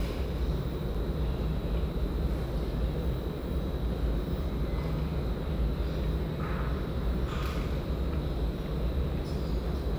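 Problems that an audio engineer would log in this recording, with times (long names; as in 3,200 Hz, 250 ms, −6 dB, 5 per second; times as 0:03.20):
0:00.94–0:00.95: drop-out 5.4 ms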